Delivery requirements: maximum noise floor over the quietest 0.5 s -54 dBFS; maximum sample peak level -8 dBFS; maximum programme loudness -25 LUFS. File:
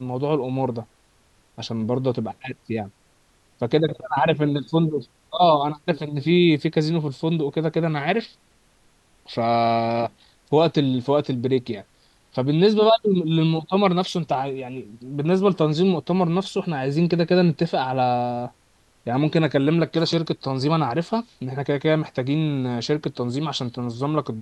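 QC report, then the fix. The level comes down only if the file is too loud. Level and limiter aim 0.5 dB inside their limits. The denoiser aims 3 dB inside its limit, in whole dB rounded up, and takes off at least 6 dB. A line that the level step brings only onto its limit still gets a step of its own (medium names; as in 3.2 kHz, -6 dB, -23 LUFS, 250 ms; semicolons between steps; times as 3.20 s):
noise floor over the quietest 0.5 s -60 dBFS: pass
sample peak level -4.5 dBFS: fail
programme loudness -22.0 LUFS: fail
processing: trim -3.5 dB; peak limiter -8.5 dBFS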